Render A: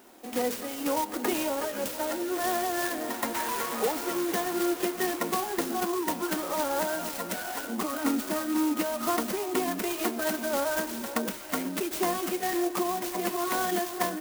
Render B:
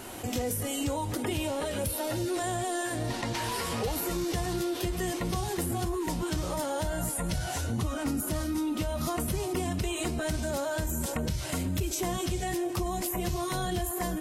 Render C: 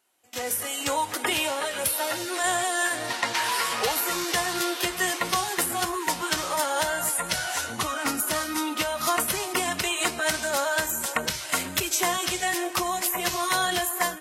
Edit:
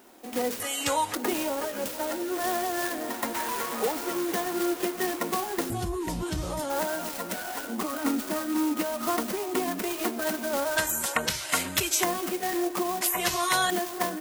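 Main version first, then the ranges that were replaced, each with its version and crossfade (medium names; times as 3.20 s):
A
0.60–1.15 s: from C
5.70–6.70 s: from B
10.77–12.04 s: from C
13.01–13.70 s: from C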